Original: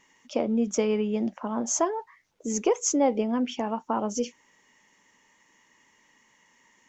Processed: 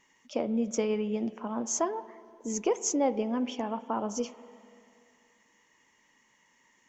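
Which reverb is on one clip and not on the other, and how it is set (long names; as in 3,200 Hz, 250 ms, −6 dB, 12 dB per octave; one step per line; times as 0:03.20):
spring reverb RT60 2.5 s, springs 48/58 ms, chirp 40 ms, DRR 15 dB
level −4 dB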